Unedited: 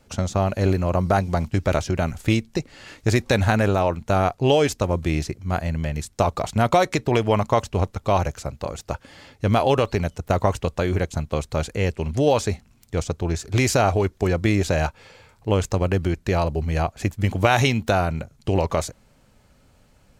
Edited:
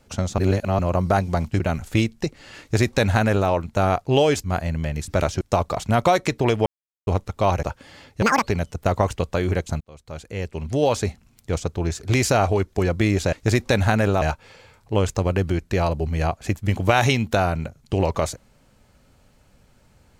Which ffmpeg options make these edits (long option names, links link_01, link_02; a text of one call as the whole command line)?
ffmpeg -i in.wav -filter_complex "[0:a]asplit=15[link_01][link_02][link_03][link_04][link_05][link_06][link_07][link_08][link_09][link_10][link_11][link_12][link_13][link_14][link_15];[link_01]atrim=end=0.382[link_16];[link_02]atrim=start=0.378:end=0.792,asetpts=PTS-STARTPTS,areverse[link_17];[link_03]atrim=start=0.788:end=1.602[link_18];[link_04]atrim=start=1.928:end=4.772[link_19];[link_05]atrim=start=5.438:end=6.082[link_20];[link_06]atrim=start=1.598:end=1.932[link_21];[link_07]atrim=start=6.078:end=7.33,asetpts=PTS-STARTPTS,afade=type=out:start_time=1.248:duration=0.004:curve=hsin[link_22];[link_08]atrim=start=7.33:end=7.74,asetpts=PTS-STARTPTS,volume=0[link_23];[link_09]atrim=start=7.74:end=8.302,asetpts=PTS-STARTPTS,afade=type=in:duration=0.004:curve=hsin[link_24];[link_10]atrim=start=8.868:end=9.464[link_25];[link_11]atrim=start=9.46:end=9.87,asetpts=PTS-STARTPTS,asetrate=87759,aresample=44100[link_26];[link_12]atrim=start=9.866:end=11.25,asetpts=PTS-STARTPTS,afade=type=out:start_time=1.38:duration=0.004:curve=hsin[link_27];[link_13]atrim=start=11.25:end=14.772,asetpts=PTS-STARTPTS,afade=type=in:duration=1.2[link_28];[link_14]atrim=start=2.928:end=3.822[link_29];[link_15]atrim=start=14.768[link_30];[link_16][link_17]acrossfade=duration=0.004:curve1=hsin:curve2=hsin[link_31];[link_31][link_18]acrossfade=duration=0.004:curve1=hsin:curve2=hsin[link_32];[link_32][link_19]acrossfade=duration=0.004:curve1=hsin:curve2=hsin[link_33];[link_33][link_20]acrossfade=duration=0.004:curve1=hsin:curve2=hsin[link_34];[link_34][link_21]acrossfade=duration=0.004:curve1=hsin:curve2=hsin[link_35];[link_22][link_23][link_24]concat=n=3:v=0:a=1[link_36];[link_35][link_36]acrossfade=duration=0.004:curve1=hsin:curve2=hsin[link_37];[link_37][link_25]acrossfade=duration=0.004:curve1=hsin:curve2=hsin[link_38];[link_38][link_26]acrossfade=duration=0.004:curve1=hsin:curve2=hsin[link_39];[link_27][link_28]concat=n=2:v=0:a=1[link_40];[link_39][link_40]acrossfade=duration=0.004:curve1=hsin:curve2=hsin[link_41];[link_41][link_29]acrossfade=duration=0.004:curve1=hsin:curve2=hsin[link_42];[link_42][link_30]acrossfade=duration=0.004:curve1=hsin:curve2=hsin" out.wav